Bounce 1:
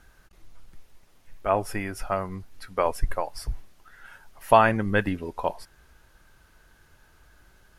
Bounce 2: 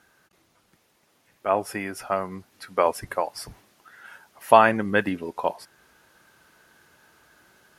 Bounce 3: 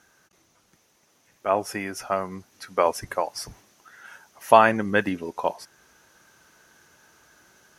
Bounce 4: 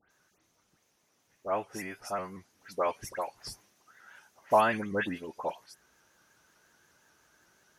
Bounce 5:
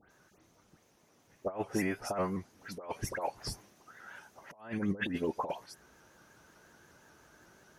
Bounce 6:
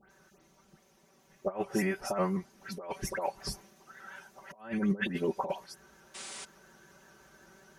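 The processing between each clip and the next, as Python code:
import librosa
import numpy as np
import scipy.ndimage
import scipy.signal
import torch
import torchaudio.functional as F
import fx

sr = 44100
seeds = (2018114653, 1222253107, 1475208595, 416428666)

y1 = scipy.signal.sosfilt(scipy.signal.butter(2, 180.0, 'highpass', fs=sr, output='sos'), x)
y1 = fx.rider(y1, sr, range_db=5, speed_s=2.0)
y1 = y1 * librosa.db_to_amplitude(-1.0)
y2 = fx.peak_eq(y1, sr, hz=6100.0, db=10.5, octaves=0.28)
y3 = fx.dispersion(y2, sr, late='highs', ms=107.0, hz=2500.0)
y3 = fx.vibrato_shape(y3, sr, shape='saw_up', rate_hz=5.5, depth_cents=100.0)
y3 = y3 * librosa.db_to_amplitude(-8.5)
y4 = fx.tilt_shelf(y3, sr, db=4.5, hz=1100.0)
y4 = fx.over_compress(y4, sr, threshold_db=-34.0, ratio=-0.5)
y5 = fx.spec_paint(y4, sr, seeds[0], shape='noise', start_s=6.14, length_s=0.31, low_hz=220.0, high_hz=10000.0, level_db=-46.0)
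y5 = y5 + 0.79 * np.pad(y5, (int(5.2 * sr / 1000.0), 0))[:len(y5)]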